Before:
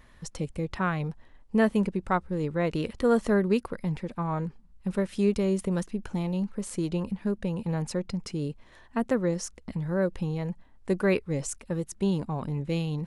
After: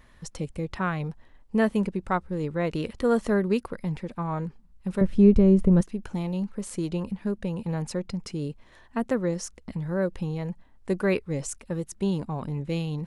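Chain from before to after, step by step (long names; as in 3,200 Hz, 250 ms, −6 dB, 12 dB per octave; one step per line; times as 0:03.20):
0:05.01–0:05.81: spectral tilt −4 dB per octave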